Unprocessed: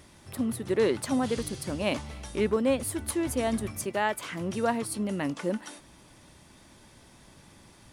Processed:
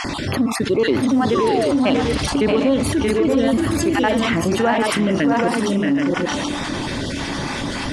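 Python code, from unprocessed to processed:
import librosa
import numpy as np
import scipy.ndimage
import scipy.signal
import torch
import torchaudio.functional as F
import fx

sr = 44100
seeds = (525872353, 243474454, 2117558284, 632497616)

p1 = fx.spec_dropout(x, sr, seeds[0], share_pct=34)
p2 = scipy.signal.sosfilt(scipy.signal.butter(2, 5000.0, 'lowpass', fs=sr, output='sos'), p1)
p3 = fx.low_shelf(p2, sr, hz=120.0, db=-5.0)
p4 = p3 + fx.echo_multitap(p3, sr, ms=(62, 628, 664, 747, 777), db=(-19.0, -7.5, -7.0, -16.5, -9.0), dry=0)
p5 = fx.spec_paint(p4, sr, seeds[1], shape='fall', start_s=1.35, length_s=0.37, low_hz=530.0, high_hz=1200.0, level_db=-34.0)
p6 = fx.peak_eq(p5, sr, hz=280.0, db=8.0, octaves=0.23)
p7 = 10.0 ** (-30.0 / 20.0) * np.tanh(p6 / 10.0 ** (-30.0 / 20.0))
p8 = p6 + (p7 * 10.0 ** (-11.0 / 20.0))
p9 = fx.env_flatten(p8, sr, amount_pct=70)
y = p9 * 10.0 ** (4.5 / 20.0)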